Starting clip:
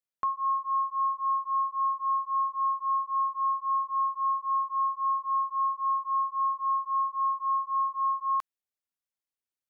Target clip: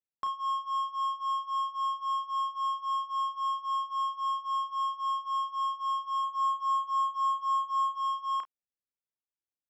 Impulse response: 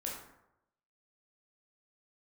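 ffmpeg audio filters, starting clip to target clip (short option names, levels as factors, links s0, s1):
-filter_complex "[0:a]adynamicsmooth=sensitivity=5.5:basefreq=810,asettb=1/sr,asplit=3[s0][s1][s2];[s0]atrim=end=6.224[s3];[s1]atrim=start=6.22:end=7.98,asetpts=PTS-STARTPTS,afade=t=in:d=0.004:c=qsin,afade=t=out:st=1.756:d=0.004:c=qsin,asplit=2[s4][s5];[s5]adelay=14,volume=0.501[s6];[s4][s6]amix=inputs=2:normalize=0,atrim=end_sample=77616[s7];[s2]atrim=start=7.976[s8];[s3][s7]acrossfade=d=0.004:c1=hsin:c2=qsin[s9];[s9][s8]acrossfade=d=0.004:c1=qsin:c2=hsin,aecho=1:1:33|49:0.447|0.168,volume=0.631"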